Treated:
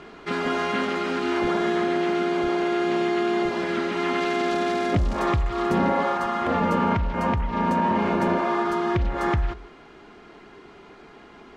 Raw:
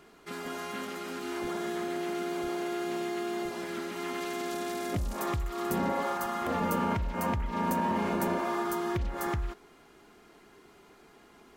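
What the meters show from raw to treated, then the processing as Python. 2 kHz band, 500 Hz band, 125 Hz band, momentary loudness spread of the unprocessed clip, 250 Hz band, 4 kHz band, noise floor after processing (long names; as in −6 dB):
+9.5 dB, +9.5 dB, +8.5 dB, 8 LU, +9.0 dB, +8.0 dB, −48 dBFS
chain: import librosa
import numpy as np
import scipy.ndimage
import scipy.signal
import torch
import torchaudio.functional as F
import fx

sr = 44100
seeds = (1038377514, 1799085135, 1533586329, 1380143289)

y = scipy.signal.sosfilt(scipy.signal.butter(2, 3900.0, 'lowpass', fs=sr, output='sos'), x)
y = fx.rider(y, sr, range_db=4, speed_s=2.0)
y = y + 10.0 ** (-19.5 / 20.0) * np.pad(y, (int(162 * sr / 1000.0), 0))[:len(y)]
y = y * librosa.db_to_amplitude(9.0)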